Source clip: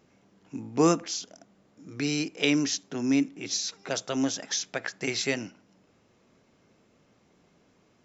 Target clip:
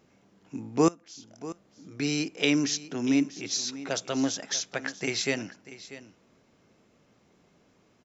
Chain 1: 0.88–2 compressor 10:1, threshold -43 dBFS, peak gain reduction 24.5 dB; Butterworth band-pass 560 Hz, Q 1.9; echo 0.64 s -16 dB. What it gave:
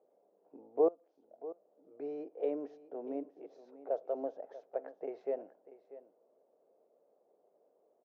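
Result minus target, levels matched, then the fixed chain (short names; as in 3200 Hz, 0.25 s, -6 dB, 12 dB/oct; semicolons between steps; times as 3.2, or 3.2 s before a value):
500 Hz band +8.0 dB
0.88–2 compressor 10:1, threshold -43 dBFS, peak gain reduction 24.5 dB; echo 0.64 s -16 dB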